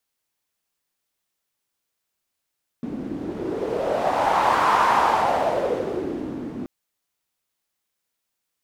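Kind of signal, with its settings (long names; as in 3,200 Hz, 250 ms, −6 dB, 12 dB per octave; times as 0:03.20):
wind from filtered noise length 3.83 s, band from 260 Hz, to 1,000 Hz, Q 3.9, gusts 1, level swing 13 dB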